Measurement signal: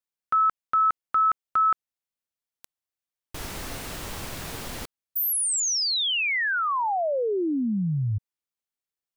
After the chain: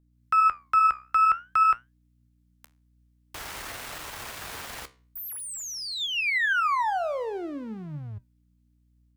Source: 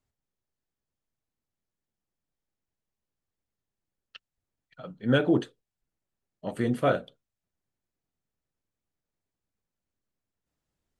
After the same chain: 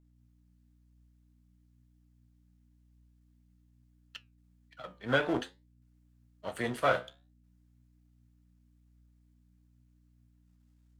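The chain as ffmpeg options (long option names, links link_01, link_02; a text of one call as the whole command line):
ffmpeg -i in.wav -filter_complex "[0:a]aeval=exprs='if(lt(val(0),0),0.447*val(0),val(0))':channel_layout=same,acrossover=split=2500[link_01][link_02];[link_02]acompressor=threshold=-43dB:ratio=4:attack=1:release=60[link_03];[link_01][link_03]amix=inputs=2:normalize=0,highpass=46,equalizer=frequency=170:width=0.5:gain=-8.5,acrossover=split=190|760[link_04][link_05][link_06];[link_06]dynaudnorm=framelen=100:gausssize=3:maxgain=6dB[link_07];[link_04][link_05][link_07]amix=inputs=3:normalize=0,aeval=exprs='val(0)+0.000794*(sin(2*PI*60*n/s)+sin(2*PI*2*60*n/s)/2+sin(2*PI*3*60*n/s)/3+sin(2*PI*4*60*n/s)/4+sin(2*PI*5*60*n/s)/5)':channel_layout=same,flanger=delay=6.2:depth=9.9:regen=75:speed=0.5:shape=triangular,volume=3.5dB" out.wav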